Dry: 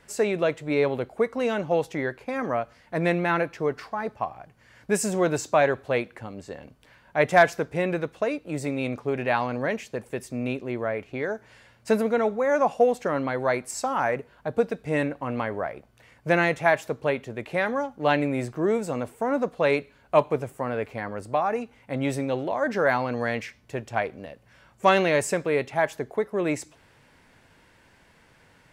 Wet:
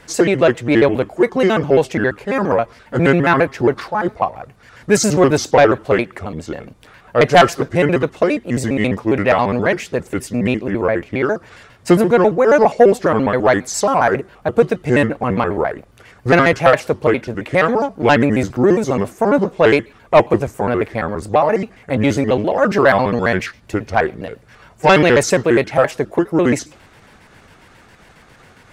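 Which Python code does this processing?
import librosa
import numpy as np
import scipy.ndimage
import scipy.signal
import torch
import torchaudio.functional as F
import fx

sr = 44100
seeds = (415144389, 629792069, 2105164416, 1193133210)

y = fx.pitch_trill(x, sr, semitones=-4.0, every_ms=68)
y = fx.fold_sine(y, sr, drive_db=4, ceiling_db=-6.5)
y = F.gain(torch.from_numpy(y), 4.0).numpy()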